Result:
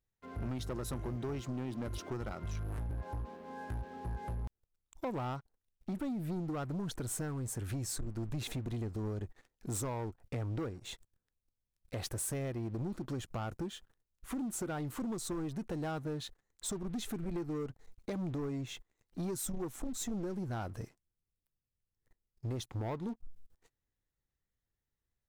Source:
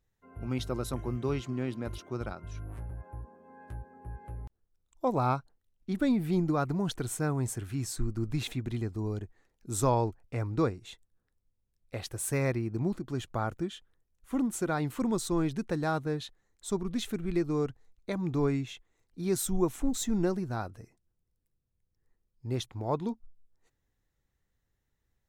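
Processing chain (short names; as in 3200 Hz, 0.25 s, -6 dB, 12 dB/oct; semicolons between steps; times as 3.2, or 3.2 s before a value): dynamic EQ 2800 Hz, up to -5 dB, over -52 dBFS, Q 0.92; compressor 12:1, threshold -38 dBFS, peak gain reduction 17 dB; sample leveller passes 3; gain -4 dB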